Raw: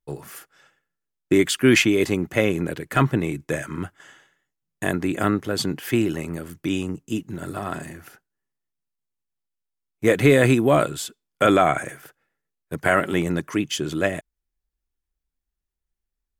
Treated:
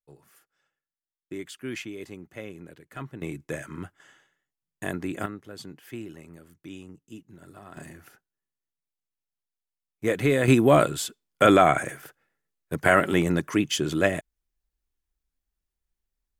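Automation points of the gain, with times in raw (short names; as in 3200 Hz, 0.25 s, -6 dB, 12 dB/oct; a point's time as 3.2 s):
-19 dB
from 3.22 s -7.5 dB
from 5.26 s -17 dB
from 7.77 s -7 dB
from 10.48 s 0 dB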